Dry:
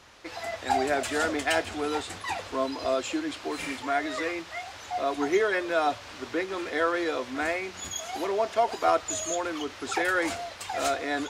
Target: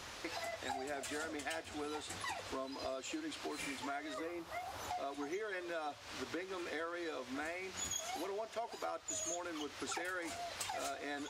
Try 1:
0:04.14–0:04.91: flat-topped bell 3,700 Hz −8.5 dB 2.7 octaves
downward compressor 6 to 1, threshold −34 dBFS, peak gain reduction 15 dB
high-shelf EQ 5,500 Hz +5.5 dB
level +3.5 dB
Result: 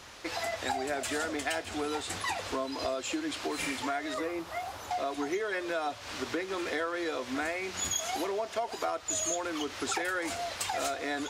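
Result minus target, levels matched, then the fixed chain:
downward compressor: peak gain reduction −9 dB
0:04.14–0:04.91: flat-topped bell 3,700 Hz −8.5 dB 2.7 octaves
downward compressor 6 to 1, threshold −45 dBFS, peak gain reduction 24 dB
high-shelf EQ 5,500 Hz +5.5 dB
level +3.5 dB

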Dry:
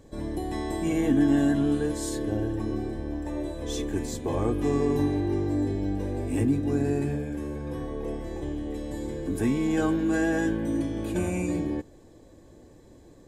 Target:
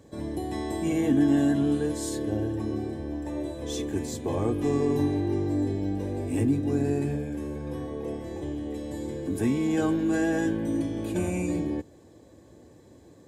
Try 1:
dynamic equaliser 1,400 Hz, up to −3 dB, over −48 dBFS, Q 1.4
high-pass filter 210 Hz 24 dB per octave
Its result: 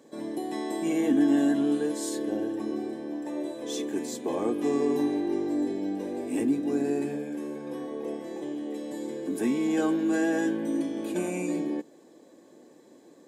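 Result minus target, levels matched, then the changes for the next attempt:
125 Hz band −13.5 dB
change: high-pass filter 67 Hz 24 dB per octave

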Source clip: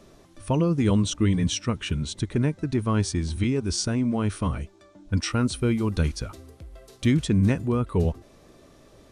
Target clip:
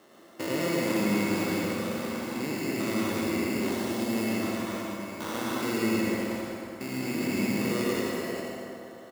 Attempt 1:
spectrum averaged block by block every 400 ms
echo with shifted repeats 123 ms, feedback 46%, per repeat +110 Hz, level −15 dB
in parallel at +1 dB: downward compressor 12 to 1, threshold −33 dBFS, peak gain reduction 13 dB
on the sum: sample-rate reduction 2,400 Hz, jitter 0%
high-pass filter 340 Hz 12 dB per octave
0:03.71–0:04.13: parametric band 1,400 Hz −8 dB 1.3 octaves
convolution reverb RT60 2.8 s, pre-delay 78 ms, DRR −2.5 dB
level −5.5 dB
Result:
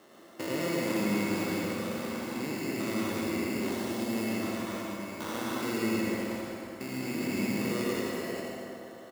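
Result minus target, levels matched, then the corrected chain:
downward compressor: peak gain reduction +8.5 dB
spectrum averaged block by block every 400 ms
echo with shifted repeats 123 ms, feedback 46%, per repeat +110 Hz, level −15 dB
in parallel at +1 dB: downward compressor 12 to 1, threshold −23.5 dBFS, peak gain reduction 4.5 dB
on the sum: sample-rate reduction 2,400 Hz, jitter 0%
high-pass filter 340 Hz 12 dB per octave
0:03.71–0:04.13: parametric band 1,400 Hz −8 dB 1.3 octaves
convolution reverb RT60 2.8 s, pre-delay 78 ms, DRR −2.5 dB
level −5.5 dB

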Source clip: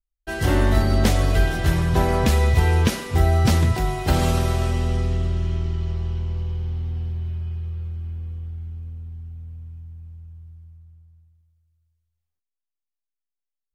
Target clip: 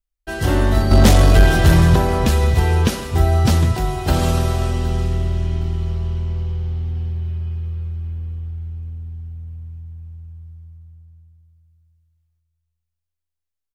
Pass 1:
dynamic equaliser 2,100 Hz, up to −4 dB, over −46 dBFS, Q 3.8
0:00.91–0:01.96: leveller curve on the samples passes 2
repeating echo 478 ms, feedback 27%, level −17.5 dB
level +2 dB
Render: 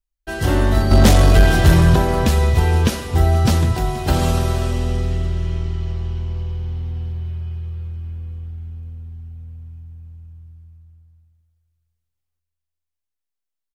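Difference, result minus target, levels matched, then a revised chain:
echo 288 ms early
dynamic equaliser 2,100 Hz, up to −4 dB, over −46 dBFS, Q 3.8
0:00.91–0:01.96: leveller curve on the samples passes 2
repeating echo 766 ms, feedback 27%, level −17.5 dB
level +2 dB

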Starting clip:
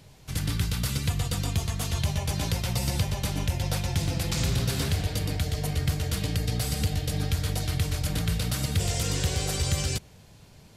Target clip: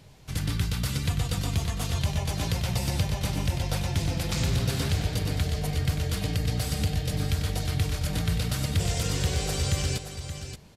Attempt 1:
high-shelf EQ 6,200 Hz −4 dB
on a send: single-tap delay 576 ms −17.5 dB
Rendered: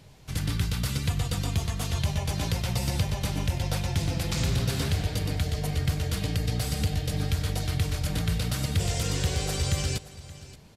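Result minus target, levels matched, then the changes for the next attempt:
echo-to-direct −8 dB
change: single-tap delay 576 ms −9.5 dB

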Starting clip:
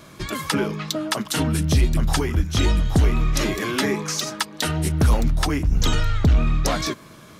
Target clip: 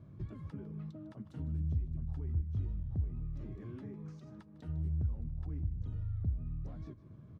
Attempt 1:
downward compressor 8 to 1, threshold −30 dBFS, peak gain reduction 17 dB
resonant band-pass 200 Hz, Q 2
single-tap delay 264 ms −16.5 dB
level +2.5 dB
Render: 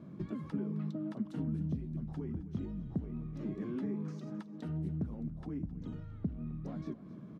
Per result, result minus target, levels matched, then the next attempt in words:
echo 111 ms late; 250 Hz band +9.0 dB
downward compressor 8 to 1, threshold −30 dBFS, peak gain reduction 17 dB
resonant band-pass 200 Hz, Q 2
single-tap delay 153 ms −16.5 dB
level +2.5 dB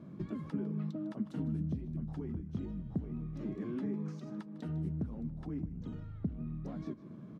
250 Hz band +8.5 dB
downward compressor 8 to 1, threshold −30 dBFS, peak gain reduction 17 dB
resonant band-pass 91 Hz, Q 2
single-tap delay 153 ms −16.5 dB
level +2.5 dB

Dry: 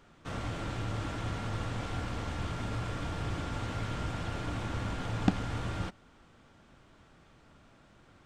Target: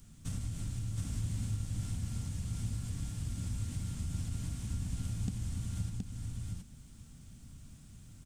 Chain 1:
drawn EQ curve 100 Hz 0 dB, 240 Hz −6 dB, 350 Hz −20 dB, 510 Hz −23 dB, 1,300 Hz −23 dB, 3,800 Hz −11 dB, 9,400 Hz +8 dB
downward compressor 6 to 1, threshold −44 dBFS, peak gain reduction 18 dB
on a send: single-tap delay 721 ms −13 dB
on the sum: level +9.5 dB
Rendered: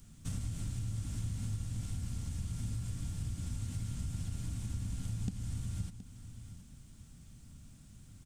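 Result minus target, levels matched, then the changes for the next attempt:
echo-to-direct −10.5 dB
change: single-tap delay 721 ms −2.5 dB

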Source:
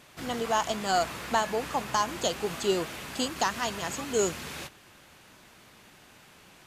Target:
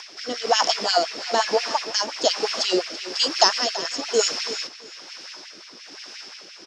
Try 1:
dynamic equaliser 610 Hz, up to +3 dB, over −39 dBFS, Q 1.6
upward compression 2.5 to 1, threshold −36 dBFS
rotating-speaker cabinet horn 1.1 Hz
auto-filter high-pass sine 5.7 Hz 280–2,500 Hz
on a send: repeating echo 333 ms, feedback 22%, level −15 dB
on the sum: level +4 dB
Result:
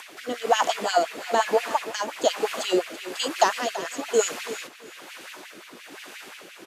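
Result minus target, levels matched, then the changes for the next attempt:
4,000 Hz band −6.0 dB
add after dynamic equaliser: low-pass with resonance 5,300 Hz, resonance Q 15

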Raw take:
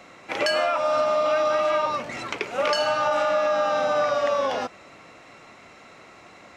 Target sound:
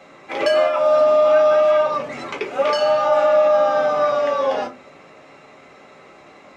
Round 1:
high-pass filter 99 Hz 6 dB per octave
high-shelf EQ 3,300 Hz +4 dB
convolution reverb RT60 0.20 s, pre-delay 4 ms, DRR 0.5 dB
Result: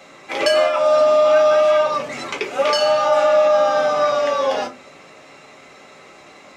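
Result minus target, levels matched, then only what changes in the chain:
8,000 Hz band +8.5 dB
change: high-shelf EQ 3,300 Hz −7 dB

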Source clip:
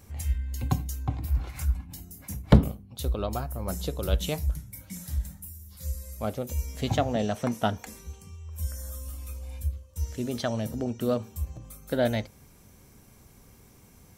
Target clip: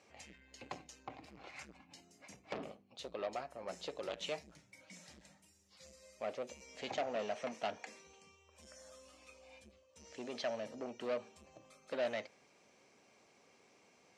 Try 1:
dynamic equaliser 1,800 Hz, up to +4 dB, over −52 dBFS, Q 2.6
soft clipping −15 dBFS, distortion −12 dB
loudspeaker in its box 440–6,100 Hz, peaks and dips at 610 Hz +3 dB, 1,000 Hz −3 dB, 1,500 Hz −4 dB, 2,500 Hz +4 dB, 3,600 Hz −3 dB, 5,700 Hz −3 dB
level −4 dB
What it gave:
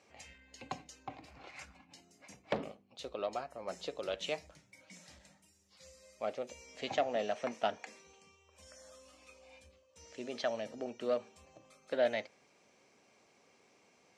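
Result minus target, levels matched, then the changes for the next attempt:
soft clipping: distortion −7 dB
change: soft clipping −27 dBFS, distortion −5 dB

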